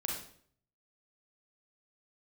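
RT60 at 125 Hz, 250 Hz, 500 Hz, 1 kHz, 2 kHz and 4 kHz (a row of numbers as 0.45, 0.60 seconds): 0.85, 0.65, 0.65, 0.55, 0.50, 0.50 seconds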